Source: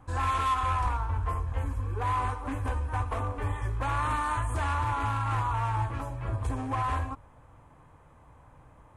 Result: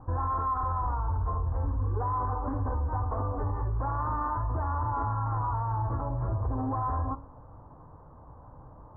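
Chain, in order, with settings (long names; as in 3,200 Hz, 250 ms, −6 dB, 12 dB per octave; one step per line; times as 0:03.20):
inverse Chebyshev low-pass filter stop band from 2,400 Hz, stop band 40 dB
hum removal 68.69 Hz, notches 20
brickwall limiter −28.5 dBFS, peak gain reduction 9.5 dB
level +6 dB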